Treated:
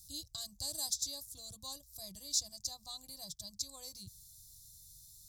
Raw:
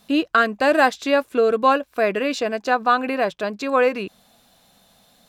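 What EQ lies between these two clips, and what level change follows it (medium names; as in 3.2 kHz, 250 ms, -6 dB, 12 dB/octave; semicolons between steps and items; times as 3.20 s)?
inverse Chebyshev band-stop 220–2800 Hz, stop band 40 dB; peaking EQ 1.9 kHz -10 dB 0.68 oct; +5.5 dB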